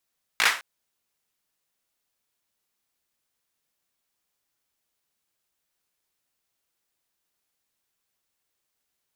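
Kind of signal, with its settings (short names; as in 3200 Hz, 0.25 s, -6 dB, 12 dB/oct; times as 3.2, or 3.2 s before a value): hand clap length 0.21 s, apart 18 ms, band 1700 Hz, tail 0.34 s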